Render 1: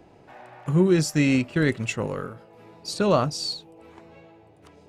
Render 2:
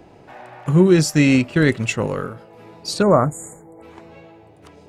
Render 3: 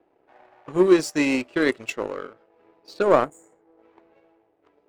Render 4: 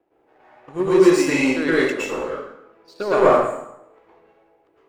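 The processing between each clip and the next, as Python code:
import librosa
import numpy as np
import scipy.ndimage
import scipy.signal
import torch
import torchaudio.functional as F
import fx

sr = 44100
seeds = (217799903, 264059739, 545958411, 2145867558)

y1 = fx.spec_erase(x, sr, start_s=3.02, length_s=0.8, low_hz=2300.0, high_hz=6700.0)
y1 = y1 * librosa.db_to_amplitude(6.0)
y2 = fx.env_lowpass(y1, sr, base_hz=2200.0, full_db=-12.0)
y2 = fx.low_shelf_res(y2, sr, hz=230.0, db=-12.5, q=1.5)
y2 = fx.power_curve(y2, sr, exponent=1.4)
y2 = y2 * librosa.db_to_amplitude(-1.0)
y3 = fx.rev_plate(y2, sr, seeds[0], rt60_s=0.79, hf_ratio=0.8, predelay_ms=100, drr_db=-9.0)
y3 = y3 * librosa.db_to_amplitude(-5.0)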